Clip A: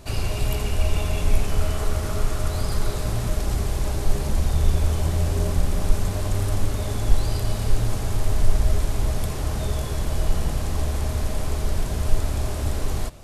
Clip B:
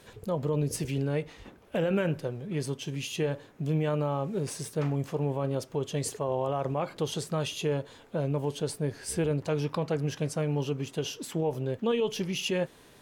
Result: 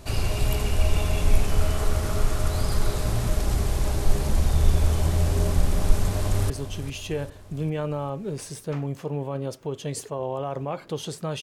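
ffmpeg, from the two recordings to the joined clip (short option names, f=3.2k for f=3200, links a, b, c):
-filter_complex "[0:a]apad=whole_dur=11.42,atrim=end=11.42,atrim=end=6.502[a];[1:a]atrim=start=2.588:end=7.51[b];[a][b]acrossfade=d=0.004:c1=hsin:c2=hsin,asplit=2[c][d];[d]afade=t=in:st=6.11:d=0.01,afade=t=out:st=6.5:d=0.01,aecho=0:1:400|800|1200|1600|2000|2400:0.266073|0.14634|0.0804869|0.0442678|0.0243473|0.013391[e];[c][e]amix=inputs=2:normalize=0"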